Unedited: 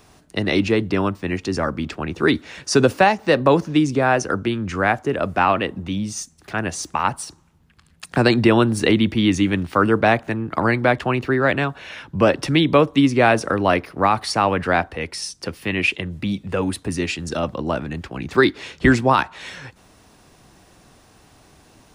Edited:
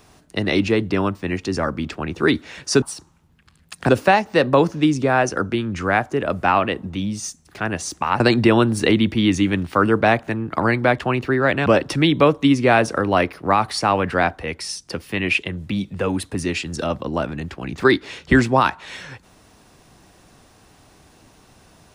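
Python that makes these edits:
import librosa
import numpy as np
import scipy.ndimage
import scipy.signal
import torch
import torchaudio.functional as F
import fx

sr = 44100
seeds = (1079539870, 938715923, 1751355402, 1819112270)

y = fx.edit(x, sr, fx.move(start_s=7.13, length_s=1.07, to_s=2.82),
    fx.cut(start_s=11.66, length_s=0.53), tone=tone)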